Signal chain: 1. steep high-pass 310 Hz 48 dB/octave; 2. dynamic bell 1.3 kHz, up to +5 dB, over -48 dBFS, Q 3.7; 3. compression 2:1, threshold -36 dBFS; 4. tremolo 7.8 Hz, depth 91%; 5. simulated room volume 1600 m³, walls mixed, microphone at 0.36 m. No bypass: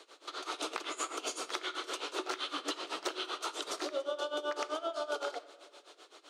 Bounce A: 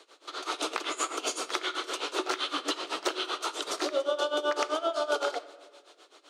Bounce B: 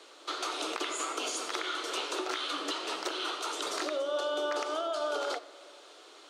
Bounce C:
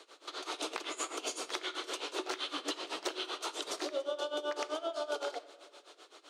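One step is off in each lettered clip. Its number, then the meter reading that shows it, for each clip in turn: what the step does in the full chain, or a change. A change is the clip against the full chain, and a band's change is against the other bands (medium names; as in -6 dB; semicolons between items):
3, mean gain reduction 5.0 dB; 4, crest factor change -3.5 dB; 2, 1 kHz band -2.5 dB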